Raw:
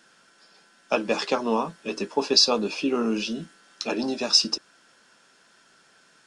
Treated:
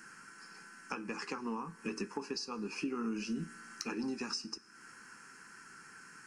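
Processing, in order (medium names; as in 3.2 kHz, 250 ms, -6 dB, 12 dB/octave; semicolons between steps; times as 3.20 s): compression 12:1, threshold -37 dBFS, peak gain reduction 23.5 dB; static phaser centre 1.5 kHz, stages 4; Schroeder reverb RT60 1.1 s, combs from 27 ms, DRR 19.5 dB; trim +6.5 dB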